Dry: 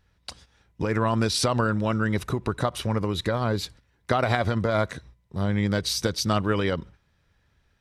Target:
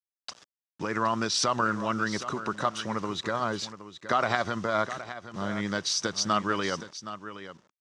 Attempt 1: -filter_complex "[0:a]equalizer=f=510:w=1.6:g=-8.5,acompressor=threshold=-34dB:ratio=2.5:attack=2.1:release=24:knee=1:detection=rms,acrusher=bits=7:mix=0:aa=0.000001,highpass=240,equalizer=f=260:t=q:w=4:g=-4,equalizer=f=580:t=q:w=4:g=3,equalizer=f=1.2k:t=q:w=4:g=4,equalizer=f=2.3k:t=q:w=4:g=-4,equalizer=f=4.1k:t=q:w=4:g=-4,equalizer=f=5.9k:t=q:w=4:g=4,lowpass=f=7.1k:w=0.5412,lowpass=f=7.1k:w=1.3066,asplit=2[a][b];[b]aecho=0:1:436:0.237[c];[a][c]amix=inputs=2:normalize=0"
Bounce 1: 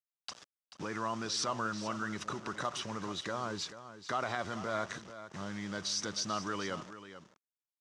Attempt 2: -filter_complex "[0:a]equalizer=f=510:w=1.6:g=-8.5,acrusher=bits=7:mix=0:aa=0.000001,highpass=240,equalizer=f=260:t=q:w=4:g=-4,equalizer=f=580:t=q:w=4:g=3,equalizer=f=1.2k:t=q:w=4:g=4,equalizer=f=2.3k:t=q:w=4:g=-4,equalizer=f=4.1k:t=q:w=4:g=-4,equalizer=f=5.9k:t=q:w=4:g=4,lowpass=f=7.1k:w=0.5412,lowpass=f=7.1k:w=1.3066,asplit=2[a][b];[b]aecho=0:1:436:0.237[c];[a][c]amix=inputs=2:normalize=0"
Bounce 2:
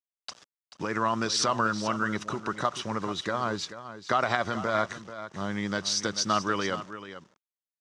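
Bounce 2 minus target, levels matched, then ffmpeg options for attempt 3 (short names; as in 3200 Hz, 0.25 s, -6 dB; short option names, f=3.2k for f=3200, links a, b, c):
echo 0.333 s early
-filter_complex "[0:a]equalizer=f=510:w=1.6:g=-8.5,acrusher=bits=7:mix=0:aa=0.000001,highpass=240,equalizer=f=260:t=q:w=4:g=-4,equalizer=f=580:t=q:w=4:g=3,equalizer=f=1.2k:t=q:w=4:g=4,equalizer=f=2.3k:t=q:w=4:g=-4,equalizer=f=4.1k:t=q:w=4:g=-4,equalizer=f=5.9k:t=q:w=4:g=4,lowpass=f=7.1k:w=0.5412,lowpass=f=7.1k:w=1.3066,asplit=2[a][b];[b]aecho=0:1:769:0.237[c];[a][c]amix=inputs=2:normalize=0"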